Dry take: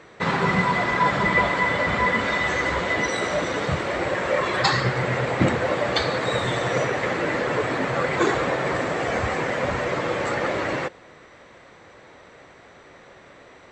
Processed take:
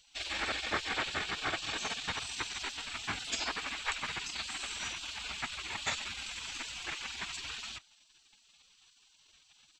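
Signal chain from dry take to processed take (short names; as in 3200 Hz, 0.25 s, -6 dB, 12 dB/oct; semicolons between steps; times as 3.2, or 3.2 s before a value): spectral gate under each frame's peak -20 dB weak; tempo 1.4×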